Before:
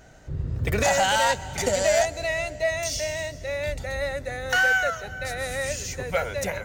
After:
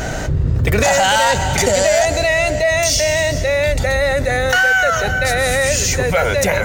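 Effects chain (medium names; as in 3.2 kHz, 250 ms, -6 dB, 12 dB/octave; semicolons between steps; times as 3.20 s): level flattener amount 70%; trim +5.5 dB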